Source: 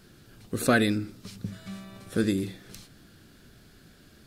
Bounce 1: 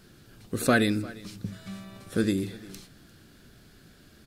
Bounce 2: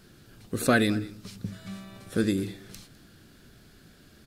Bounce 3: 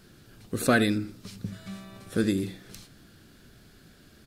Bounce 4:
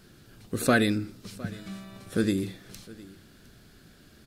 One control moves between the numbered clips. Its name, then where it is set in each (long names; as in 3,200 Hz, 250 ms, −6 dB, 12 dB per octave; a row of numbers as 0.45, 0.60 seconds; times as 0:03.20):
single-tap delay, delay time: 349, 205, 80, 710 milliseconds